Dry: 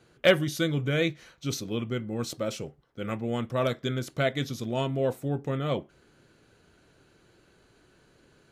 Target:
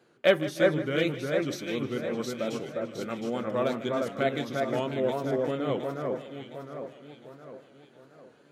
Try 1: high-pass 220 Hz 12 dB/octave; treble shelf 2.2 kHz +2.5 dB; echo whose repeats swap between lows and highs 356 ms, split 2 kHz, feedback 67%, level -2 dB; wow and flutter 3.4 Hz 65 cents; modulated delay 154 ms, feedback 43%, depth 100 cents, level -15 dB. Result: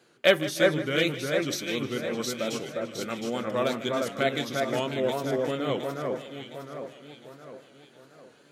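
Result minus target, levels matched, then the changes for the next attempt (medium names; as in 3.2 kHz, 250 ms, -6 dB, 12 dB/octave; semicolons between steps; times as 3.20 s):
4 kHz band +5.5 dB
change: treble shelf 2.2 kHz -7 dB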